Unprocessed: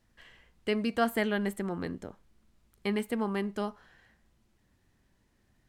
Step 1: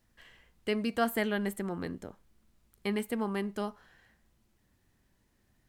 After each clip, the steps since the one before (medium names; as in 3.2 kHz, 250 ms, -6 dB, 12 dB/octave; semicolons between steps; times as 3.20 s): treble shelf 11 kHz +9 dB; trim -1.5 dB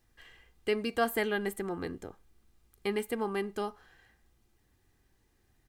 comb 2.5 ms, depth 42%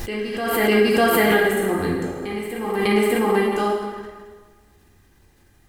reverse echo 600 ms -9.5 dB; plate-style reverb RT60 1.5 s, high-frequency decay 0.75×, DRR -4.5 dB; swell ahead of each attack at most 32 dB/s; trim +7.5 dB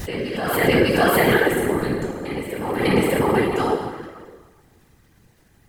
whisper effect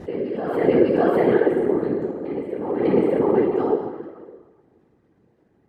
band-pass filter 380 Hz, Q 1.2; trim +2.5 dB